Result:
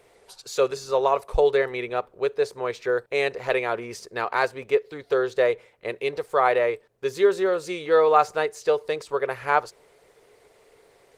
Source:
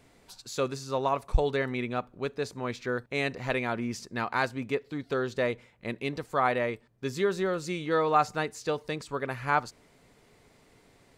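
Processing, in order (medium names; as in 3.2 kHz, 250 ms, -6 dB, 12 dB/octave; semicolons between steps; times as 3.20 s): resonant low shelf 330 Hz -8.5 dB, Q 3; trim +4 dB; Opus 24 kbps 48 kHz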